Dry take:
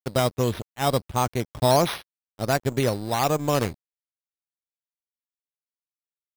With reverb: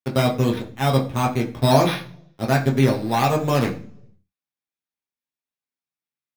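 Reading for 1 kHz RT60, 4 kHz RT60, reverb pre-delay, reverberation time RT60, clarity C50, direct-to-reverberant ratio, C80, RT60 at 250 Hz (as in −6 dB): 0.45 s, 0.50 s, 7 ms, 0.55 s, 12.0 dB, −1.0 dB, 16.5 dB, 0.75 s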